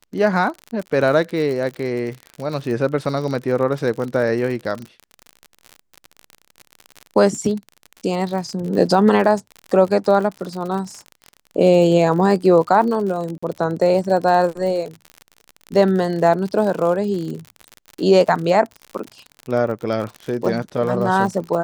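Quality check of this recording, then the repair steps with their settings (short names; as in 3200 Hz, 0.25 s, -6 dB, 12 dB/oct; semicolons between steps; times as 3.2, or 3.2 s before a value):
crackle 55/s -26 dBFS
13.38–13.43 gap 45 ms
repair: de-click; interpolate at 13.38, 45 ms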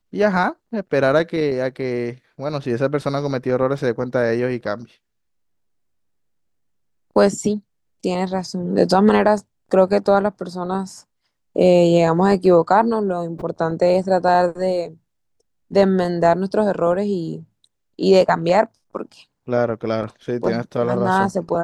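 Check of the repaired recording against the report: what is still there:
none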